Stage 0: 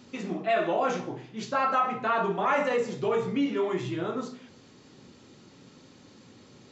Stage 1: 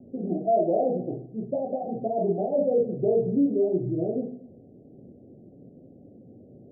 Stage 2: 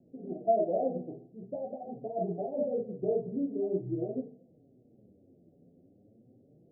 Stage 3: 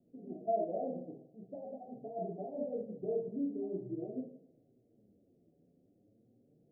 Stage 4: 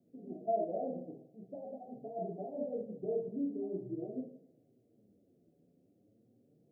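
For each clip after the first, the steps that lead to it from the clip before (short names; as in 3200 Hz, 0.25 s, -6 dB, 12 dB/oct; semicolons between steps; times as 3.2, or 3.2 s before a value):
steep low-pass 720 Hz 96 dB/oct; gain +4.5 dB
flange 0.45 Hz, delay 5.8 ms, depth 6.8 ms, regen +26%; upward expander 1.5:1, over -37 dBFS
two-slope reverb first 0.62 s, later 2.8 s, from -27 dB, DRR 4.5 dB; dynamic EQ 240 Hz, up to +5 dB, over -50 dBFS, Q 2.5; gain -8.5 dB
HPF 76 Hz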